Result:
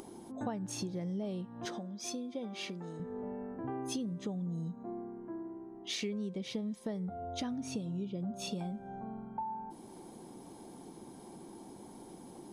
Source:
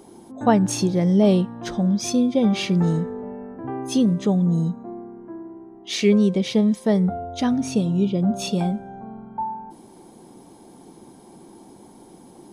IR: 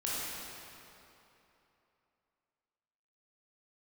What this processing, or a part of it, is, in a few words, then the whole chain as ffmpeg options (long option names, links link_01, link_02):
upward and downward compression: -filter_complex "[0:a]acompressor=mode=upward:threshold=-39dB:ratio=2.5,acompressor=threshold=-29dB:ratio=8,asettb=1/sr,asplit=3[link_01][link_02][link_03];[link_01]atrim=end=1.654[link_04];[link_02]atrim=start=1.65:end=3,asetpts=PTS-STARTPTS,afade=type=in:duration=0.004:curve=qsin,afade=type=out:start_time=1.346:duration=0.004:curve=qsin,highpass=260[link_05];[link_03]atrim=start=2.996[link_06];[link_04][link_05]acrossfade=duration=0.004:curve1=hsin:curve2=qsin[link_07];[link_07][link_06]acrossfade=duration=0.004:curve1=qsin:curve2=hsin,volume=-6dB"